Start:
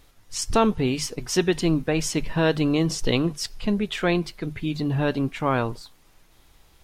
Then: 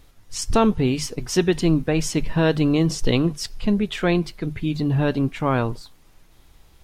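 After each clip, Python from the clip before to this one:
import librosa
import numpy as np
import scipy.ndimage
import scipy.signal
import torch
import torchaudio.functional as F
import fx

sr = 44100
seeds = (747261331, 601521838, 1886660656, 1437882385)

y = fx.low_shelf(x, sr, hz=330.0, db=5.0)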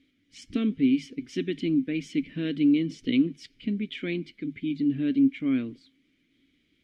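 y = fx.vowel_filter(x, sr, vowel='i')
y = y * 10.0 ** (4.0 / 20.0)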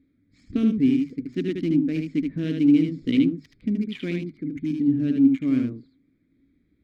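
y = fx.wiener(x, sr, points=15)
y = fx.peak_eq(y, sr, hz=75.0, db=8.0, octaves=2.9)
y = y + 10.0 ** (-4.5 / 20.0) * np.pad(y, (int(76 * sr / 1000.0), 0))[:len(y)]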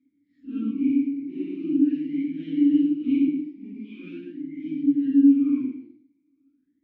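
y = fx.phase_scramble(x, sr, seeds[0], window_ms=200)
y = fx.rev_plate(y, sr, seeds[1], rt60_s=0.51, hf_ratio=1.0, predelay_ms=95, drr_db=9.5)
y = fx.vowel_sweep(y, sr, vowels='i-u', hz=0.42)
y = y * 10.0 ** (2.5 / 20.0)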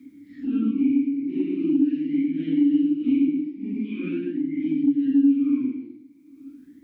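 y = fx.band_squash(x, sr, depth_pct=70)
y = y * 10.0 ** (1.0 / 20.0)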